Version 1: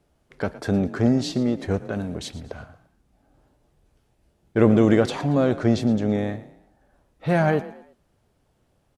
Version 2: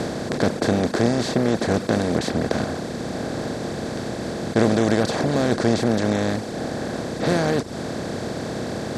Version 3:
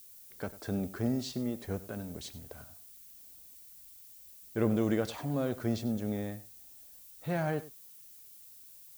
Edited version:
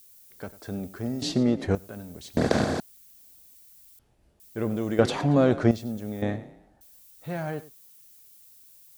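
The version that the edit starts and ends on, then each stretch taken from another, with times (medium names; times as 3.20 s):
3
1.22–1.75 s: from 1
2.37–2.80 s: from 2
3.99–4.40 s: from 1
4.99–5.71 s: from 1
6.22–6.81 s: from 1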